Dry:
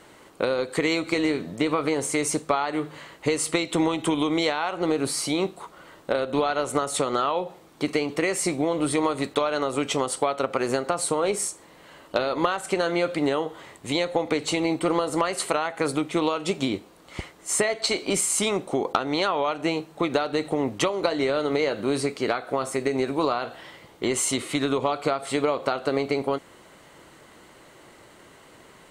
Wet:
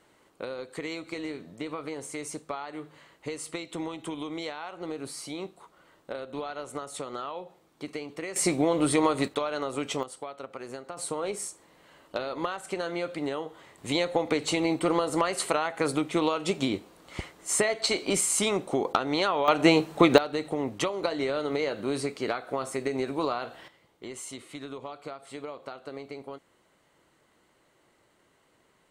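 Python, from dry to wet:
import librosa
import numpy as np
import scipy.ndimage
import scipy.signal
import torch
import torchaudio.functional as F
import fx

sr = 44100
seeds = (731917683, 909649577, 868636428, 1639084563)

y = fx.gain(x, sr, db=fx.steps((0.0, -12.0), (8.36, 0.0), (9.28, -6.0), (10.03, -15.0), (10.97, -8.0), (13.78, -2.0), (19.48, 6.0), (20.18, -5.0), (23.68, -15.5)))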